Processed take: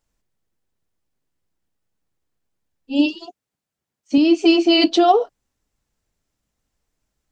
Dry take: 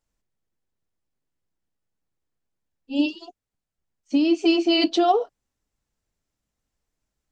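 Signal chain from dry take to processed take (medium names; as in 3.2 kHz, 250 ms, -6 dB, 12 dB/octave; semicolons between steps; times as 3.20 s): 3.25–4.18 s: high-pass 120 Hz 12 dB/octave; trim +5 dB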